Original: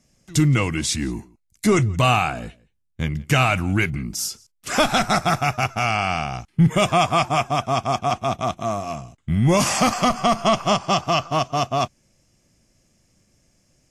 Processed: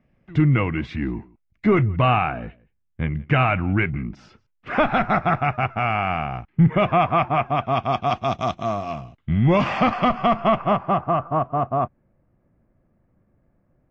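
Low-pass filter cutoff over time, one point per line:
low-pass filter 24 dB per octave
0:07.43 2,400 Hz
0:08.42 5,400 Hz
0:09.65 2,900 Hz
0:10.21 2,900 Hz
0:11.23 1,500 Hz

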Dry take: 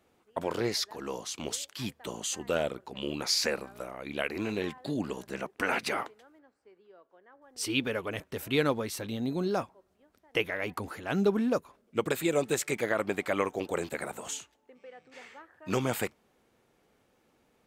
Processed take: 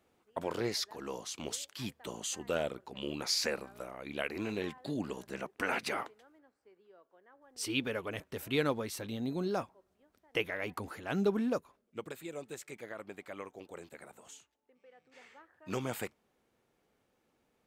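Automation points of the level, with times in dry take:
0:11.49 −4 dB
0:12.17 −15.5 dB
0:14.37 −15.5 dB
0:15.33 −7 dB

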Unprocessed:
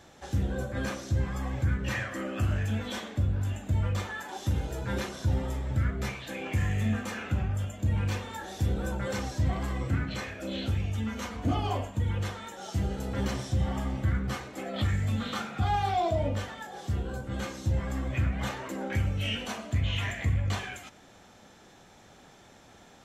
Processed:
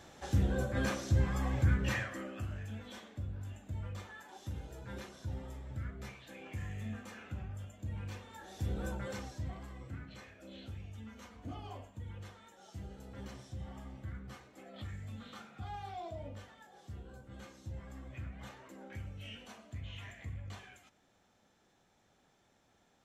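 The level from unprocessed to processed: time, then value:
0:01.83 −1 dB
0:02.50 −13.5 dB
0:08.28 −13.5 dB
0:08.85 −6 dB
0:09.70 −16.5 dB

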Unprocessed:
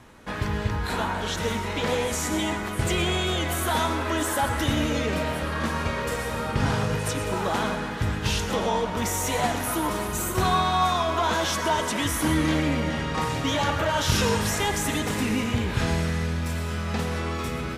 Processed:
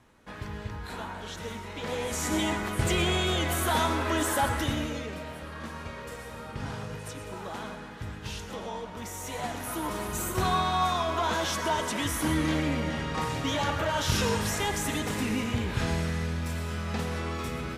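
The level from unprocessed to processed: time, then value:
0:01.74 −10.5 dB
0:02.33 −1.5 dB
0:04.46 −1.5 dB
0:05.17 −12 dB
0:09.10 −12 dB
0:10.15 −4 dB

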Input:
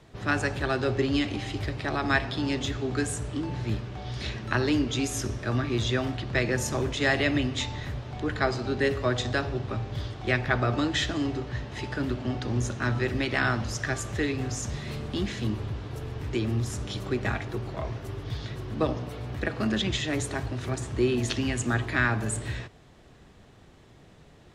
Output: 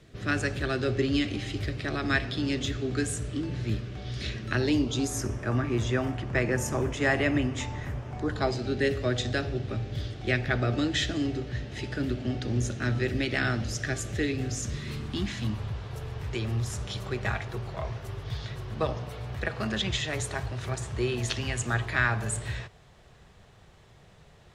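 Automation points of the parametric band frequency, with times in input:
parametric band −12 dB 0.66 octaves
0:04.51 890 Hz
0:05.30 4,000 Hz
0:08.13 4,000 Hz
0:08.63 1,000 Hz
0:14.52 1,000 Hz
0:15.78 280 Hz

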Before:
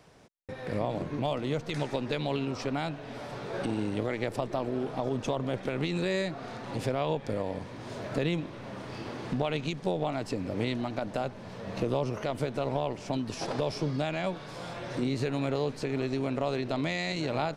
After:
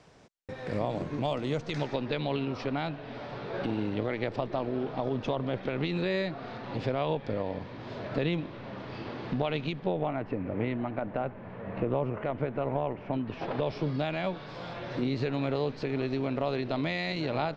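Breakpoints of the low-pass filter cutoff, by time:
low-pass filter 24 dB per octave
0:01.50 8,200 Hz
0:02.08 4,500 Hz
0:09.61 4,500 Hz
0:10.16 2,400 Hz
0:13.05 2,400 Hz
0:14.03 4,700 Hz

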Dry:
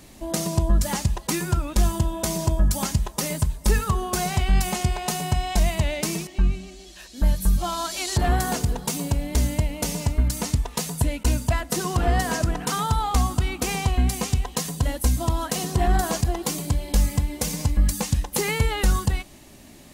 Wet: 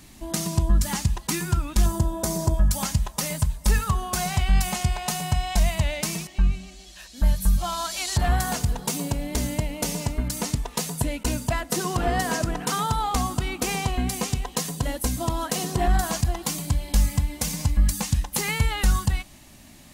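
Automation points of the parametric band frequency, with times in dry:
parametric band −9 dB 0.95 octaves
520 Hz
from 0:01.86 2,800 Hz
from 0:02.54 360 Hz
from 0:08.79 69 Hz
from 0:15.88 420 Hz

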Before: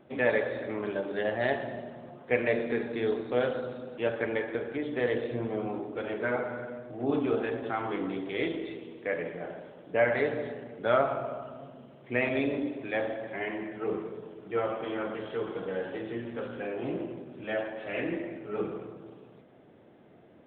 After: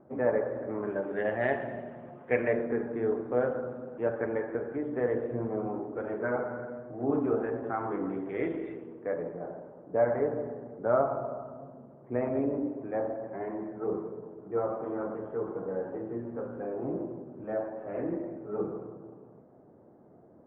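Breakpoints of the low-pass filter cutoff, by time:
low-pass filter 24 dB per octave
0:00.66 1,300 Hz
0:01.31 2,300 Hz
0:02.29 2,300 Hz
0:02.73 1,500 Hz
0:07.97 1,500 Hz
0:08.65 2,000 Hz
0:09.21 1,200 Hz

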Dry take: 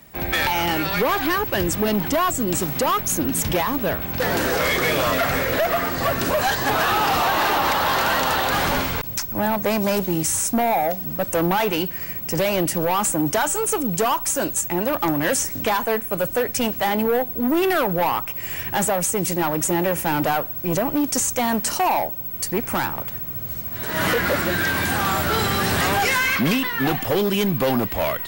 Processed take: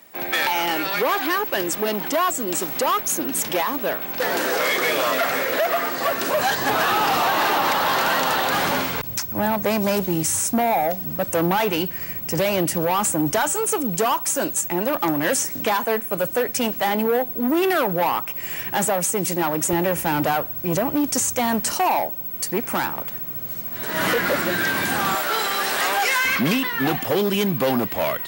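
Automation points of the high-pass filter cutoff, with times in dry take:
310 Hz
from 0:06.34 150 Hz
from 0:08.99 55 Hz
from 0:13.53 150 Hz
from 0:19.73 55 Hz
from 0:21.72 160 Hz
from 0:25.15 490 Hz
from 0:26.25 130 Hz

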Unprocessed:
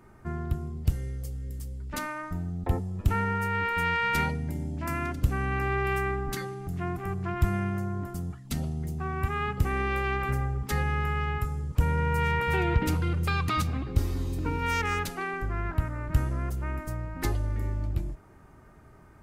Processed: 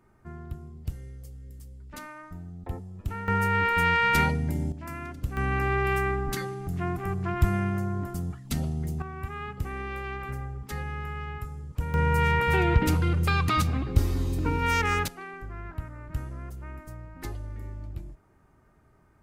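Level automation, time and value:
−8 dB
from 0:03.28 +4 dB
from 0:04.72 −6.5 dB
from 0:05.37 +2 dB
from 0:09.02 −6.5 dB
from 0:11.94 +3 dB
from 0:15.08 −8 dB

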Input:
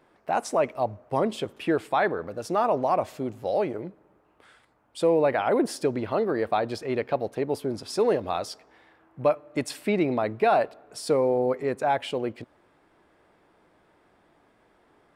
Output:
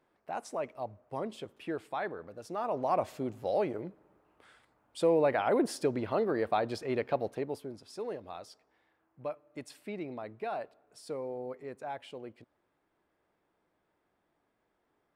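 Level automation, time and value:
0:02.57 −12 dB
0:02.97 −4.5 dB
0:07.28 −4.5 dB
0:07.80 −15.5 dB

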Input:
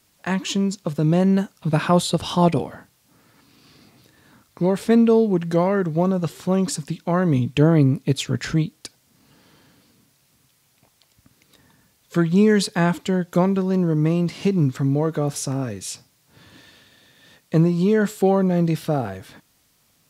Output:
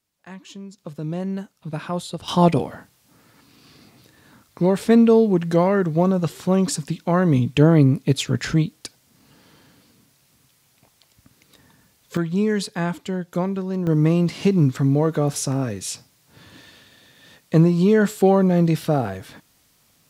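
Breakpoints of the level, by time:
−16 dB
from 0:00.78 −9.5 dB
from 0:02.28 +1.5 dB
from 0:12.17 −5 dB
from 0:13.87 +2 dB

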